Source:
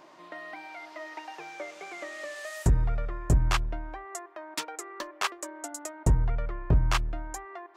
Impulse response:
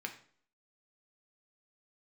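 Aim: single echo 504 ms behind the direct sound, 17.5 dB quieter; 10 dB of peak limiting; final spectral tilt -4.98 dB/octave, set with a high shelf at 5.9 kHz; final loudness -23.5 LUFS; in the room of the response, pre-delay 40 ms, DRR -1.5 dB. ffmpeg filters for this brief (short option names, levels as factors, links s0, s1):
-filter_complex "[0:a]highshelf=f=5900:g=-8,alimiter=level_in=1.06:limit=0.0631:level=0:latency=1,volume=0.944,aecho=1:1:504:0.133,asplit=2[s0][s1];[1:a]atrim=start_sample=2205,adelay=40[s2];[s1][s2]afir=irnorm=-1:irlink=0,volume=1.12[s3];[s0][s3]amix=inputs=2:normalize=0,volume=3.98"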